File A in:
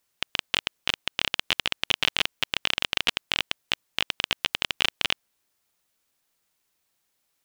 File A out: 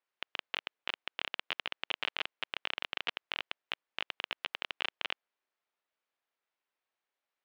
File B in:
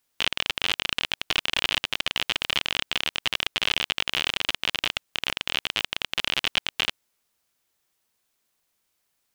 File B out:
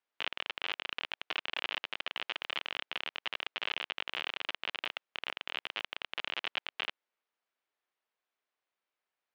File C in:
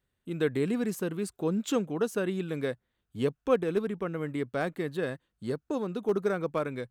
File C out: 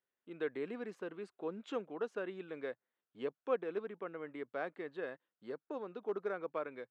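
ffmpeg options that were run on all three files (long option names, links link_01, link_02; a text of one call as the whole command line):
ffmpeg -i in.wav -af "highpass=390,lowpass=2600,volume=-7.5dB" out.wav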